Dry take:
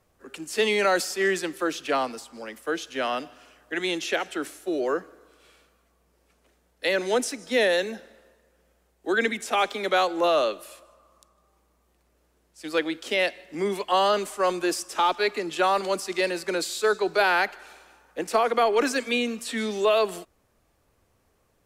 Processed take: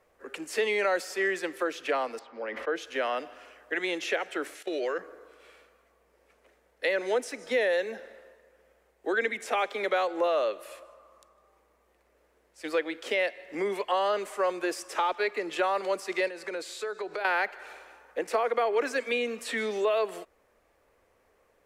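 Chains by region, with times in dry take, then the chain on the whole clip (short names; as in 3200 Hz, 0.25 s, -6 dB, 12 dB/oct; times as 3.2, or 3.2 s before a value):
2.19–2.76 HPF 160 Hz 6 dB/oct + air absorption 260 m + sustainer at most 35 dB/s
4.55–4.99 weighting filter D + level quantiser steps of 15 dB
16.28–17.25 compressor 5:1, threshold -34 dBFS + LPF 12000 Hz
whole clip: graphic EQ 125/500/1000/2000 Hz -7/+10/+4/+9 dB; compressor 2:1, threshold -25 dBFS; gain -5 dB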